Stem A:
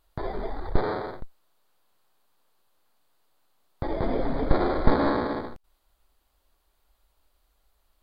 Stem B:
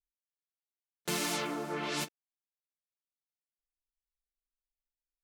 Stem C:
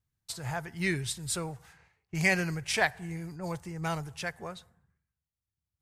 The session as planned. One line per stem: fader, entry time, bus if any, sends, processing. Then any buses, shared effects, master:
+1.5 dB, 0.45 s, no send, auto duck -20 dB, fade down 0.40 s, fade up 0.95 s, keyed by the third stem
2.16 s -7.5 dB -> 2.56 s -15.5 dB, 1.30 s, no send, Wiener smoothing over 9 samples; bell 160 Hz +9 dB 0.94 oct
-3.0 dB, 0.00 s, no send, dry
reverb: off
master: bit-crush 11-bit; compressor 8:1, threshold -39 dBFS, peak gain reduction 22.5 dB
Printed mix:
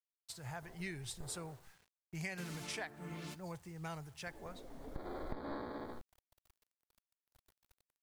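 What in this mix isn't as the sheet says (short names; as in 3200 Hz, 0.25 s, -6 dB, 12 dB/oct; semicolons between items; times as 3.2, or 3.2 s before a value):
stem A +1.5 dB -> -7.5 dB; stem C -3.0 dB -> -10.0 dB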